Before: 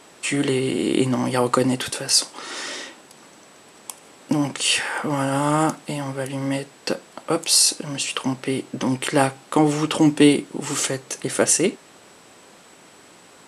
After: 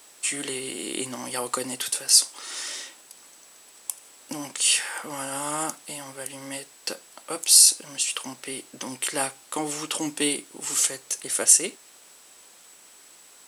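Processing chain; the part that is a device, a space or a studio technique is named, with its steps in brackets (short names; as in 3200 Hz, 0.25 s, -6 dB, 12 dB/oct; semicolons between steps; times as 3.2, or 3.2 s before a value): turntable without a phono preamp (RIAA curve recording; white noise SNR 36 dB); gain -9 dB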